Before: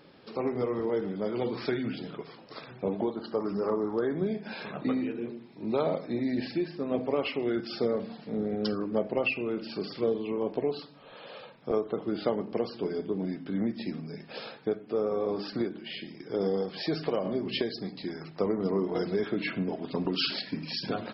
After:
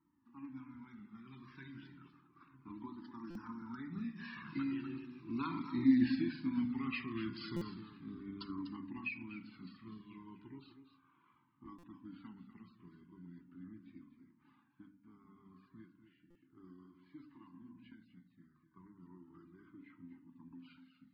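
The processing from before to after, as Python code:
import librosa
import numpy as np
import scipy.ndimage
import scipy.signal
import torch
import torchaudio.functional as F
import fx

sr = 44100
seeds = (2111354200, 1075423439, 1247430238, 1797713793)

y = fx.fade_out_tail(x, sr, length_s=0.92)
y = fx.doppler_pass(y, sr, speed_mps=21, closest_m=6.6, pass_at_s=5.93)
y = scipy.signal.sosfilt(scipy.signal.butter(2, 42.0, 'highpass', fs=sr, output='sos'), y)
y = fx.peak_eq(y, sr, hz=260.0, db=6.5, octaves=0.21)
y = fx.rider(y, sr, range_db=5, speed_s=0.5)
y = fx.env_lowpass(y, sr, base_hz=990.0, full_db=-38.5)
y = scipy.signal.sosfilt(scipy.signal.ellip(3, 1.0, 60, [310.0, 990.0], 'bandstop', fs=sr, output='sos'), y)
y = fx.high_shelf(y, sr, hz=5000.0, db=-11.0)
y = fx.hum_notches(y, sr, base_hz=50, count=6)
y = y + 10.0 ** (-10.5 / 20.0) * np.pad(y, (int(246 * sr / 1000.0), 0))[:len(y)]
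y = fx.buffer_glitch(y, sr, at_s=(3.3, 7.56, 11.78, 16.3), block=256, repeats=8)
y = fx.comb_cascade(y, sr, direction='falling', hz=0.35)
y = y * 10.0 ** (8.0 / 20.0)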